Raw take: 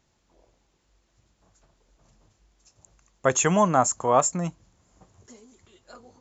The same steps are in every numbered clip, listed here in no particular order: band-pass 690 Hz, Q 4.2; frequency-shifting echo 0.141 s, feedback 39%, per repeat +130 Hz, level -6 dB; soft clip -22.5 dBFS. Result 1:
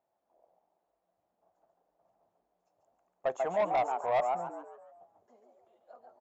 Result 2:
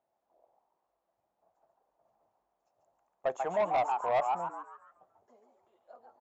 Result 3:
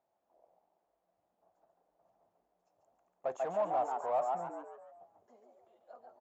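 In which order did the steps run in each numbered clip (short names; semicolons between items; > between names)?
frequency-shifting echo > band-pass > soft clip; band-pass > frequency-shifting echo > soft clip; frequency-shifting echo > soft clip > band-pass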